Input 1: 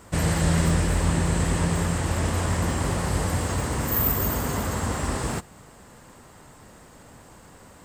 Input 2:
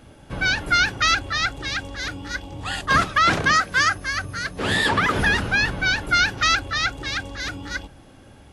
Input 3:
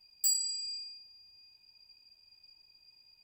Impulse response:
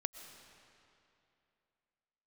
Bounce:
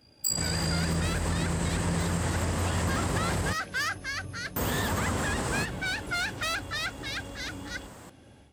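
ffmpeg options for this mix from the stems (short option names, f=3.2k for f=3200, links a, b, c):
-filter_complex "[0:a]adelay=250,volume=-7.5dB,asplit=3[a][b][c];[a]atrim=end=3.53,asetpts=PTS-STARTPTS,afade=t=out:st=3.526:d=0.004:c=hsin[d];[b]atrim=start=3.53:end=4.56,asetpts=PTS-STARTPTS,volume=0[e];[c]atrim=start=4.56,asetpts=PTS-STARTPTS,afade=t=in:d=0.004:c=hsin[f];[d][e][f]concat=n=3:v=0:a=1[g];[1:a]equalizer=f=1.2k:t=o:w=0.77:g=-4.5,asoftclip=type=tanh:threshold=-20dB,volume=-14dB[h];[2:a]tremolo=f=56:d=0.919,volume=3dB[i];[g][h]amix=inputs=2:normalize=0,dynaudnorm=f=130:g=3:m=5dB,alimiter=limit=-23dB:level=0:latency=1:release=113,volume=0dB[j];[i][j]amix=inputs=2:normalize=0,highpass=55,dynaudnorm=f=350:g=3:m=4dB"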